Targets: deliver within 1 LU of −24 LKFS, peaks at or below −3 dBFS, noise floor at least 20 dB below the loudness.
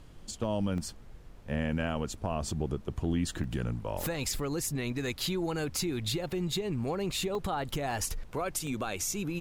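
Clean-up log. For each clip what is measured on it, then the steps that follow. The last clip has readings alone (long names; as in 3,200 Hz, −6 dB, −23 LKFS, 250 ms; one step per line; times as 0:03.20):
number of dropouts 5; longest dropout 1.5 ms; background noise floor −50 dBFS; target noise floor −53 dBFS; integrated loudness −33.0 LKFS; sample peak −18.0 dBFS; target loudness −24.0 LKFS
→ repair the gap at 0:00.78/0:03.44/0:07.35/0:07.91/0:08.67, 1.5 ms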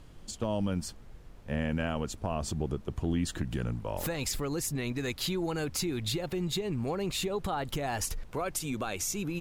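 number of dropouts 0; background noise floor −50 dBFS; target noise floor −53 dBFS
→ noise reduction from a noise print 6 dB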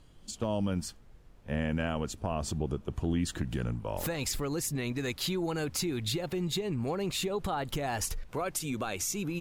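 background noise floor −55 dBFS; integrated loudness −33.0 LKFS; sample peak −18.0 dBFS; target loudness −24.0 LKFS
→ level +9 dB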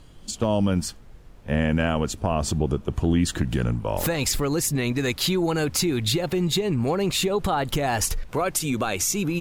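integrated loudness −24.0 LKFS; sample peak −9.0 dBFS; background noise floor −46 dBFS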